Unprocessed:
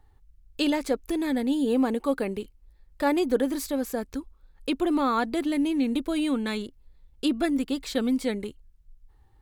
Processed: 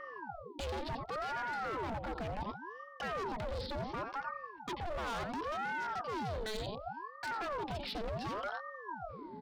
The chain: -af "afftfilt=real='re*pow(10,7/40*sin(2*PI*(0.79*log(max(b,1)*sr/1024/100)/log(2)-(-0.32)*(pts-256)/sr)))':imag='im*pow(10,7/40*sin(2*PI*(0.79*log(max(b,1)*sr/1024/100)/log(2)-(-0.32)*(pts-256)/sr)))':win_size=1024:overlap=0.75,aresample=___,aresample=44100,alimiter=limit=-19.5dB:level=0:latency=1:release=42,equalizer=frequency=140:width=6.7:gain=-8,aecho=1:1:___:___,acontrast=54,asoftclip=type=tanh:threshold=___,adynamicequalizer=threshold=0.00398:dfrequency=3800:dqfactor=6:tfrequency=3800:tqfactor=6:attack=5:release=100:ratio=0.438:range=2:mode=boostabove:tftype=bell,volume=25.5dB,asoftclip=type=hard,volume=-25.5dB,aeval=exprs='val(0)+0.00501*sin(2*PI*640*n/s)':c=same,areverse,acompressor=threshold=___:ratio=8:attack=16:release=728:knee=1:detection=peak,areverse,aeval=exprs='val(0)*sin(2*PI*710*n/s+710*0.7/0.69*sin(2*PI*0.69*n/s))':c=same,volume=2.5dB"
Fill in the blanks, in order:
11025, 88, 0.237, -17dB, -37dB